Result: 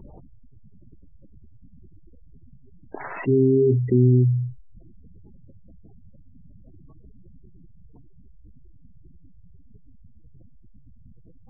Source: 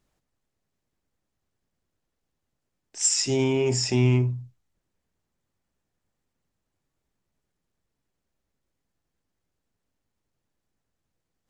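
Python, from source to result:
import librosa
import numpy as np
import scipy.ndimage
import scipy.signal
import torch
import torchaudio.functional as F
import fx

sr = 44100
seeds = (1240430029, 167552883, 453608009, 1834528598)

y = scipy.signal.sosfilt(scipy.signal.butter(4, 1400.0, 'lowpass', fs=sr, output='sos'), x)
y = fx.env_lowpass_down(y, sr, base_hz=1000.0, full_db=-23.5)
y = fx.spec_gate(y, sr, threshold_db=-15, keep='strong')
y = fx.env_flatten(y, sr, amount_pct=50)
y = y * 10.0 ** (3.5 / 20.0)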